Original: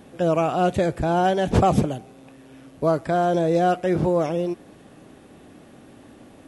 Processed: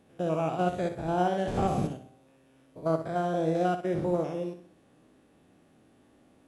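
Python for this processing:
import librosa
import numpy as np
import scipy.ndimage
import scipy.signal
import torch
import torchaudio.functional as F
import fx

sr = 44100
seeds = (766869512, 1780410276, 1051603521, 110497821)

y = fx.spec_steps(x, sr, hold_ms=100)
y = fx.room_flutter(y, sr, wall_m=10.6, rt60_s=0.51)
y = fx.upward_expand(y, sr, threshold_db=-33.0, expansion=1.5)
y = y * librosa.db_to_amplitude(-5.5)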